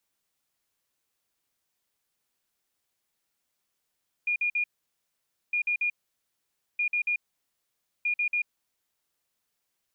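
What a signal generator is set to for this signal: beep pattern sine 2.43 kHz, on 0.09 s, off 0.05 s, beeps 3, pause 0.89 s, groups 4, -23.5 dBFS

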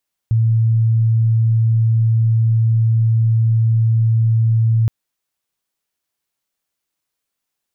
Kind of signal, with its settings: tone sine 113 Hz -11 dBFS 4.57 s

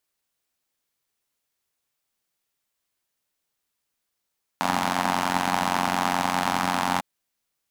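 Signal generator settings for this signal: four-cylinder engine model, steady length 2.40 s, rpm 2700, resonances 230/830 Hz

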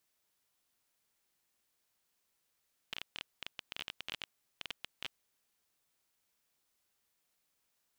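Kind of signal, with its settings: random clicks 16 per s -22.5 dBFS 2.20 s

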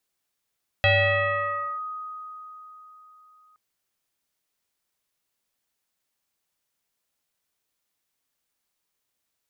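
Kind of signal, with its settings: FM tone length 2.72 s, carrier 1.25 kHz, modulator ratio 0.54, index 2.7, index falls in 0.96 s linear, decay 3.99 s, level -15 dB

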